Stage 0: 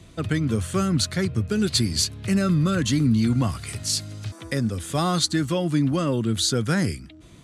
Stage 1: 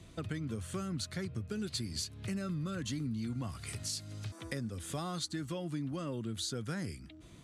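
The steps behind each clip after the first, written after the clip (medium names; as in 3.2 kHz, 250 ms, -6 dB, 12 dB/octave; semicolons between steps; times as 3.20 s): compression 3:1, threshold -31 dBFS, peak gain reduction 11.5 dB; trim -6.5 dB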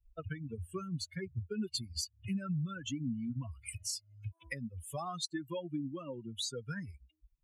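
expander on every frequency bin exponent 3; trim +6 dB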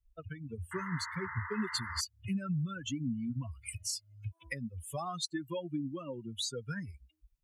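painted sound noise, 0.71–2.01 s, 880–2100 Hz -44 dBFS; level rider gain up to 5.5 dB; trim -4 dB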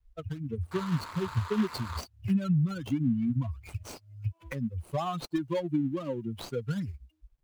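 median filter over 25 samples; trim +8 dB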